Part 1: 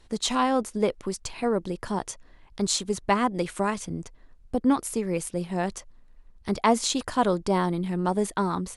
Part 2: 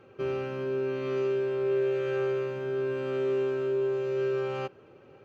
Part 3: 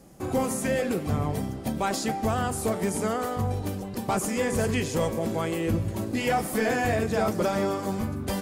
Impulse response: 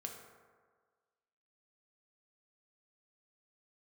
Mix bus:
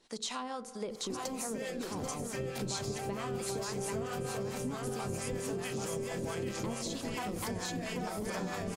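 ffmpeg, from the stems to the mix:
-filter_complex "[0:a]asubboost=boost=4.5:cutoff=200,volume=-2.5dB,asplit=4[link_01][link_02][link_03][link_04];[link_02]volume=-13dB[link_05];[link_03]volume=-11.5dB[link_06];[1:a]lowshelf=frequency=160:width_type=q:width=1.5:gain=9,adelay=2150,volume=-2dB[link_07];[2:a]adelay=900,volume=1.5dB,asplit=2[link_08][link_09];[link_09]volume=-10dB[link_10];[link_04]apad=whole_len=410928[link_11];[link_08][link_11]sidechaingate=range=-33dB:threshold=-40dB:ratio=16:detection=peak[link_12];[link_01][link_12]amix=inputs=2:normalize=0,highpass=190,acompressor=threshold=-30dB:ratio=6,volume=0dB[link_13];[3:a]atrim=start_sample=2205[link_14];[link_05][link_14]afir=irnorm=-1:irlink=0[link_15];[link_06][link_10]amix=inputs=2:normalize=0,aecho=0:1:785|1570|2355|3140|3925:1|0.36|0.13|0.0467|0.0168[link_16];[link_07][link_13][link_15][link_16]amix=inputs=4:normalize=0,equalizer=frequency=5500:width=0.8:gain=7,acrossover=split=610[link_17][link_18];[link_17]aeval=exprs='val(0)*(1-0.7/2+0.7/2*cos(2*PI*4.5*n/s))':channel_layout=same[link_19];[link_18]aeval=exprs='val(0)*(1-0.7/2-0.7/2*cos(2*PI*4.5*n/s))':channel_layout=same[link_20];[link_19][link_20]amix=inputs=2:normalize=0,acompressor=threshold=-35dB:ratio=3"

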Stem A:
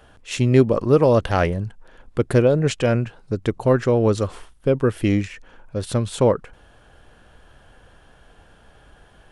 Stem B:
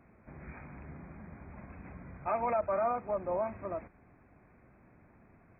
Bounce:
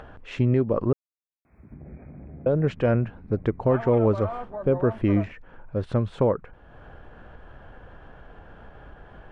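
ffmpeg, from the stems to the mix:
ffmpeg -i stem1.wav -i stem2.wav -filter_complex "[0:a]lowpass=1700,alimiter=limit=-11dB:level=0:latency=1:release=255,volume=-1dB,asplit=3[link_01][link_02][link_03];[link_01]atrim=end=0.93,asetpts=PTS-STARTPTS,afade=type=out:start_time=0.926:duration=0.004:curve=hsin[link_04];[link_02]atrim=start=0.93:end=2.46,asetpts=PTS-STARTPTS,volume=0[link_05];[link_03]atrim=start=2.46,asetpts=PTS-STARTPTS,afade=type=in:duration=0.004:curve=hsin[link_06];[link_04][link_05][link_06]concat=n=3:v=0:a=1[link_07];[1:a]afwtdn=0.00501,alimiter=level_in=5dB:limit=-24dB:level=0:latency=1:release=96,volume=-5dB,adelay=1450,volume=3dB[link_08];[link_07][link_08]amix=inputs=2:normalize=0,highshelf=frequency=8500:gain=4.5,acompressor=mode=upward:threshold=-36dB:ratio=2.5" out.wav

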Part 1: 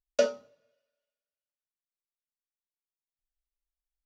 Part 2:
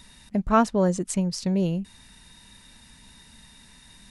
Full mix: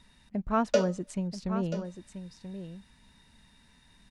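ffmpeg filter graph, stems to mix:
ffmpeg -i stem1.wav -i stem2.wav -filter_complex "[0:a]adelay=550,volume=-0.5dB,asplit=2[link_01][link_02];[link_02]volume=-14.5dB[link_03];[1:a]lowpass=frequency=3200:poles=1,volume=-7.5dB,asplit=2[link_04][link_05];[link_05]volume=-10dB[link_06];[link_03][link_06]amix=inputs=2:normalize=0,aecho=0:1:983:1[link_07];[link_01][link_04][link_07]amix=inputs=3:normalize=0" out.wav

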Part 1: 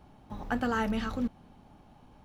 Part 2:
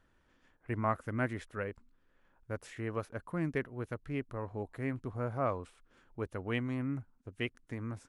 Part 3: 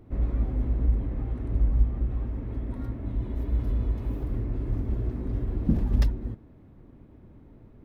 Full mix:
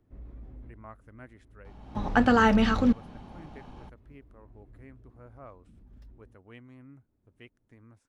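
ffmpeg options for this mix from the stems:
ffmpeg -i stem1.wav -i stem2.wav -i stem3.wav -filter_complex "[0:a]lowpass=6500,dynaudnorm=framelen=140:gausssize=3:maxgain=6dB,adelay=1650,volume=3dB[link_01];[1:a]volume=-15.5dB,asplit=2[link_02][link_03];[2:a]acrossover=split=300|3000[link_04][link_05][link_06];[link_05]acompressor=threshold=-38dB:ratio=6[link_07];[link_04][link_07][link_06]amix=inputs=3:normalize=0,alimiter=limit=-21.5dB:level=0:latency=1:release=14,volume=-17dB[link_08];[link_03]apad=whole_len=346109[link_09];[link_08][link_09]sidechaincompress=threshold=-56dB:ratio=10:attack=39:release=1120[link_10];[link_01][link_02][link_10]amix=inputs=3:normalize=0" out.wav

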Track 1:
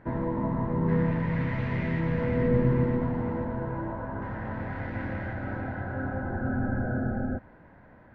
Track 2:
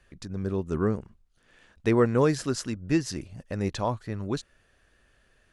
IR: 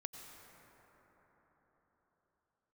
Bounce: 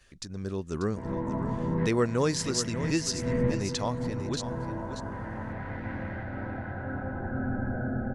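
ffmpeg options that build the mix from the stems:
-filter_complex "[0:a]adelay=900,volume=-2.5dB,asplit=2[link_01][link_02];[link_02]volume=-13.5dB[link_03];[1:a]agate=range=-33dB:threshold=-59dB:ratio=3:detection=peak,equalizer=frequency=6000:width_type=o:width=2:gain=11,volume=-4.5dB,asplit=3[link_04][link_05][link_06];[link_05]volume=-10.5dB[link_07];[link_06]apad=whole_len=398953[link_08];[link_01][link_08]sidechaincompress=threshold=-38dB:ratio=8:attack=6.3:release=175[link_09];[link_03][link_07]amix=inputs=2:normalize=0,aecho=0:1:589:1[link_10];[link_09][link_04][link_10]amix=inputs=3:normalize=0,acompressor=mode=upward:threshold=-54dB:ratio=2.5"

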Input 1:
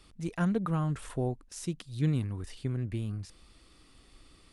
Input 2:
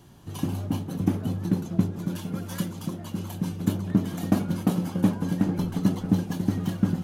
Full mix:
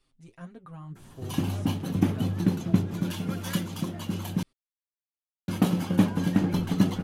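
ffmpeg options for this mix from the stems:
ffmpeg -i stem1.wav -i stem2.wav -filter_complex "[0:a]aecho=1:1:7.5:0.75,flanger=delay=3.9:depth=7.3:regen=74:speed=2:shape=triangular,volume=-11dB[link_01];[1:a]adynamicequalizer=threshold=0.00316:dfrequency=2600:dqfactor=0.8:tfrequency=2600:tqfactor=0.8:attack=5:release=100:ratio=0.375:range=3:mode=boostabove:tftype=bell,adelay=950,volume=0.5dB,asplit=3[link_02][link_03][link_04];[link_02]atrim=end=4.43,asetpts=PTS-STARTPTS,afade=type=out:start_time=4.426:duration=0.004:curve=hsin[link_05];[link_03]atrim=start=4.43:end=5.48,asetpts=PTS-STARTPTS,volume=0[link_06];[link_04]atrim=start=5.48,asetpts=PTS-STARTPTS,afade=type=in:duration=0.004:curve=hsin[link_07];[link_05][link_06][link_07]concat=n=3:v=0:a=1[link_08];[link_01][link_08]amix=inputs=2:normalize=0" out.wav

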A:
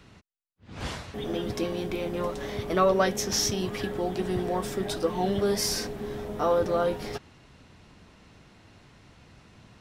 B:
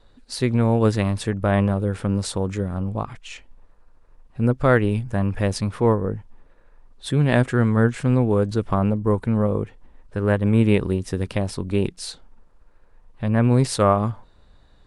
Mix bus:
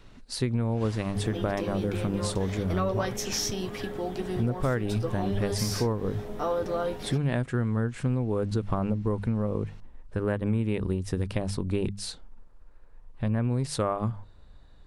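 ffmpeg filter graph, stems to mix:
ffmpeg -i stem1.wav -i stem2.wav -filter_complex "[0:a]volume=-3dB[link_01];[1:a]lowshelf=frequency=160:gain=6,bandreject=frequency=50:width_type=h:width=6,bandreject=frequency=100:width_type=h:width=6,bandreject=frequency=150:width_type=h:width=6,bandreject=frequency=200:width_type=h:width=6,volume=-3.5dB[link_02];[link_01][link_02]amix=inputs=2:normalize=0,acompressor=threshold=-23dB:ratio=6" out.wav

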